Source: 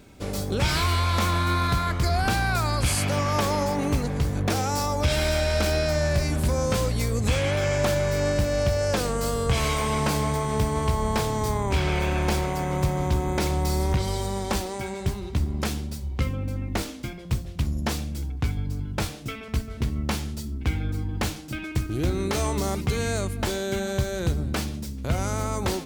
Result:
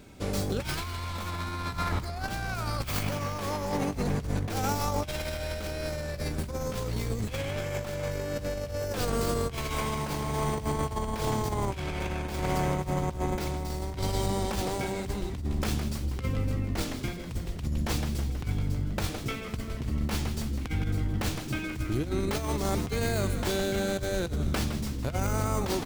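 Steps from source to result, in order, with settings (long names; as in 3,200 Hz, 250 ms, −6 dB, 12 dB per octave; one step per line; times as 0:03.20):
stylus tracing distortion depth 0.14 ms
on a send: echo with shifted repeats 161 ms, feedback 64%, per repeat −95 Hz, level −11.5 dB
on the sum: compressor whose output falls as the input rises −26 dBFS, ratio −0.5
level −3 dB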